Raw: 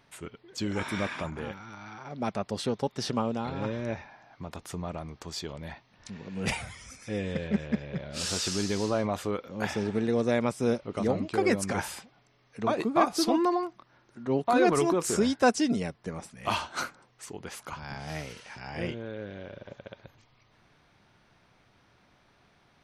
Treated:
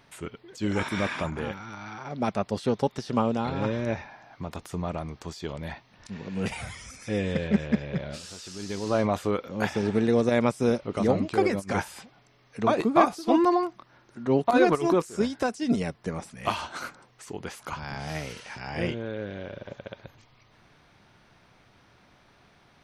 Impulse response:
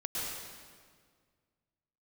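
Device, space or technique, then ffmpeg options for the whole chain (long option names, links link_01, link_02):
de-esser from a sidechain: -filter_complex "[0:a]asplit=2[link_01][link_02];[link_02]highpass=frequency=4800:width=0.5412,highpass=frequency=4800:width=1.3066,apad=whole_len=1007180[link_03];[link_01][link_03]sidechaincompress=threshold=-46dB:ratio=12:attack=0.97:release=53,volume=4.5dB"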